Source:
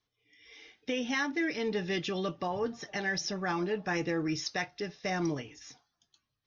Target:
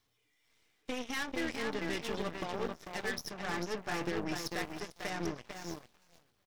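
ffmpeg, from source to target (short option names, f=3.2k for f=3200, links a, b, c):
-filter_complex "[0:a]aeval=exprs='val(0)+0.5*0.00596*sgn(val(0))':c=same,asplit=2[a][b];[b]adelay=445,lowpass=f=2.6k:p=1,volume=-3dB,asplit=2[c][d];[d]adelay=445,lowpass=f=2.6k:p=1,volume=0.32,asplit=2[e][f];[f]adelay=445,lowpass=f=2.6k:p=1,volume=0.32,asplit=2[g][h];[h]adelay=445,lowpass=f=2.6k:p=1,volume=0.32[i];[a][c][e][g][i]amix=inputs=5:normalize=0,aeval=exprs='0.1*(cos(1*acos(clip(val(0)/0.1,-1,1)))-cos(1*PI/2))+0.0178*(cos(4*acos(clip(val(0)/0.1,-1,1)))-cos(4*PI/2))+0.0158*(cos(7*acos(clip(val(0)/0.1,-1,1)))-cos(7*PI/2))':c=same,volume=-7dB"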